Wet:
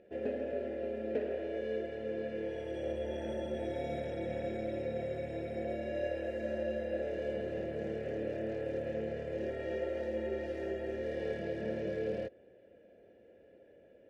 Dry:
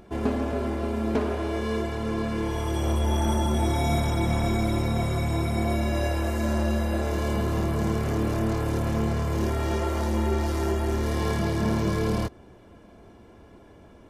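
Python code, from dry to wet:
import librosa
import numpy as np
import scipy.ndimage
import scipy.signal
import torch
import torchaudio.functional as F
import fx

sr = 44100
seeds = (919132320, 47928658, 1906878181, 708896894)

y = fx.vowel_filter(x, sr, vowel='e')
y = fx.low_shelf(y, sr, hz=290.0, db=10.5)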